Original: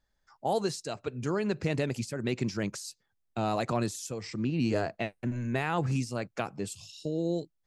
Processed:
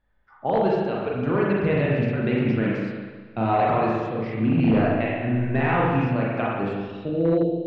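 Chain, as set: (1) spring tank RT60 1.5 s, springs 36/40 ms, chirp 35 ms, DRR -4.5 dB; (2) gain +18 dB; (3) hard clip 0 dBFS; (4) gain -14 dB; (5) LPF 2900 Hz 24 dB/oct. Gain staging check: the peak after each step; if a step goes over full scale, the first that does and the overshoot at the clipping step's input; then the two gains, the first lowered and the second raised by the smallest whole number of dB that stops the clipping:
-10.0, +8.0, 0.0, -14.0, -13.0 dBFS; step 2, 8.0 dB; step 2 +10 dB, step 4 -6 dB

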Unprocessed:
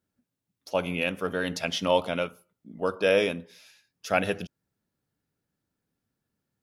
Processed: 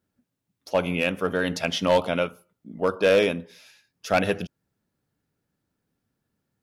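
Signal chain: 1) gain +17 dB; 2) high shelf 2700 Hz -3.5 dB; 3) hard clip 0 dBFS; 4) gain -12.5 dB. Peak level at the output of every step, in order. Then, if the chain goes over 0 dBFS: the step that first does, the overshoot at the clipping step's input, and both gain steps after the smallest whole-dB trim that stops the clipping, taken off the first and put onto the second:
+8.0, +7.5, 0.0, -12.5 dBFS; step 1, 7.5 dB; step 1 +9 dB, step 4 -4.5 dB

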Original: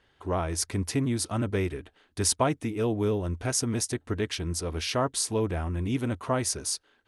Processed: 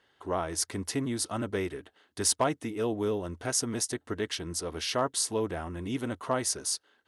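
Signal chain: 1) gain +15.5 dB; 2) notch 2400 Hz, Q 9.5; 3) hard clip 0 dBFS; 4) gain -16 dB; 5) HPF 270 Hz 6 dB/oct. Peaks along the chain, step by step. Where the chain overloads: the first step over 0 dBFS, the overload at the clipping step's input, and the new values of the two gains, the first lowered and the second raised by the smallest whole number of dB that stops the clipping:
+4.0, +4.0, 0.0, -16.0, -14.0 dBFS; step 1, 4.0 dB; step 1 +11.5 dB, step 4 -12 dB

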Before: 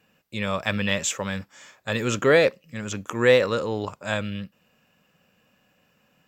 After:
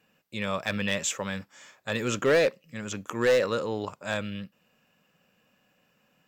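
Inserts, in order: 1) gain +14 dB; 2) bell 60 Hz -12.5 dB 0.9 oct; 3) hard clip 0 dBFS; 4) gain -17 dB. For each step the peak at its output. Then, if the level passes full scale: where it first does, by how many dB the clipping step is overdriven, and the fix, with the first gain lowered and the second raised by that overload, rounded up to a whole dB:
+10.0, +10.0, 0.0, -17.0 dBFS; step 1, 10.0 dB; step 1 +4 dB, step 4 -7 dB

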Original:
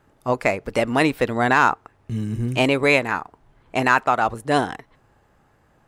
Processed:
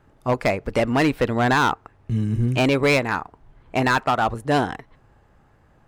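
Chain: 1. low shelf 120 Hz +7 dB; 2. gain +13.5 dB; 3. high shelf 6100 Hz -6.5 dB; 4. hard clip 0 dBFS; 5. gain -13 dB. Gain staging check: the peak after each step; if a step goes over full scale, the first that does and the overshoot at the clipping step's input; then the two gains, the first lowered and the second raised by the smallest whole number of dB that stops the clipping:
-4.0, +9.5, +9.5, 0.0, -13.0 dBFS; step 2, 9.5 dB; step 2 +3.5 dB, step 5 -3 dB

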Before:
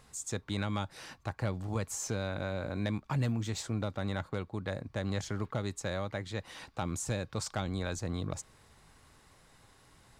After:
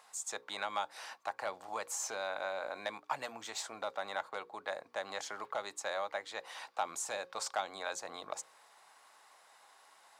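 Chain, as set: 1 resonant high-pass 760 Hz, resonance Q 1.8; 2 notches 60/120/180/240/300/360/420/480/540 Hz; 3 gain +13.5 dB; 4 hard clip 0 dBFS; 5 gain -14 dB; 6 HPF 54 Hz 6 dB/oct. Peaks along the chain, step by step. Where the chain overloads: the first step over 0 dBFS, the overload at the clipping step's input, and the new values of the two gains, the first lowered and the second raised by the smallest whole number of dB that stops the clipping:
-18.5, -18.5, -5.0, -5.0, -19.0, -19.0 dBFS; no overload

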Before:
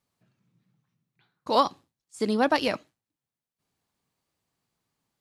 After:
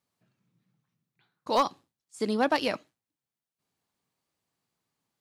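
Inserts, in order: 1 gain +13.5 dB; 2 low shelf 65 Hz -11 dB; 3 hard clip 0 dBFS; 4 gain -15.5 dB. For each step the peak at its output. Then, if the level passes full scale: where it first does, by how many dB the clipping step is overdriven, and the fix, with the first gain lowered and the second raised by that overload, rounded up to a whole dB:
+6.0, +6.5, 0.0, -15.5 dBFS; step 1, 6.5 dB; step 1 +6.5 dB, step 4 -8.5 dB

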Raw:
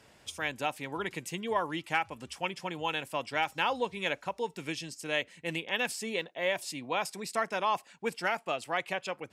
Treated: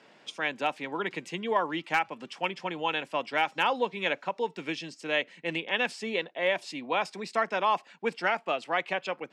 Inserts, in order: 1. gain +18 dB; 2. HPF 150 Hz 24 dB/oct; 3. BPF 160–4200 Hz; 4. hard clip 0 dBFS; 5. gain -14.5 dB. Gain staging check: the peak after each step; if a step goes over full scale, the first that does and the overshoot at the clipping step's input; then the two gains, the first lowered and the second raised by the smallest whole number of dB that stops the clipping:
+4.5, +3.5, +4.0, 0.0, -14.5 dBFS; step 1, 4.0 dB; step 1 +14 dB, step 5 -10.5 dB

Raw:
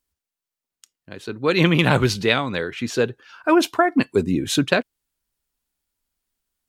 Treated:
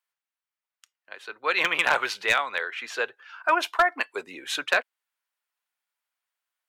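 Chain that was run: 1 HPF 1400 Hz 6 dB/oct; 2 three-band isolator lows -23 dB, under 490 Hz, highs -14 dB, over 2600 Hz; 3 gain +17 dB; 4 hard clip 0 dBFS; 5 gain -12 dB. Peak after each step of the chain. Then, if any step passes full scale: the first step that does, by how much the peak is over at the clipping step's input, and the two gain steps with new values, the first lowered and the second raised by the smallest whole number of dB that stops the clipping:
-3.0, -8.0, +9.0, 0.0, -12.0 dBFS; step 3, 9.0 dB; step 3 +8 dB, step 5 -3 dB

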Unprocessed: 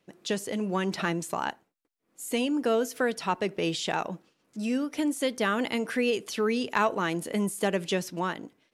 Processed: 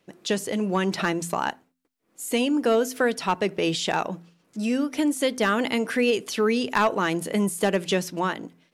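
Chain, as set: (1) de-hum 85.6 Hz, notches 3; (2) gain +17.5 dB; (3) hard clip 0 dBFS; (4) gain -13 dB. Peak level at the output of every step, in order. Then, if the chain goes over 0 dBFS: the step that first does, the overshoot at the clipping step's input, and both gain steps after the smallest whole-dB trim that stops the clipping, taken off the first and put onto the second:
-11.5, +6.0, 0.0, -13.0 dBFS; step 2, 6.0 dB; step 2 +11.5 dB, step 4 -7 dB

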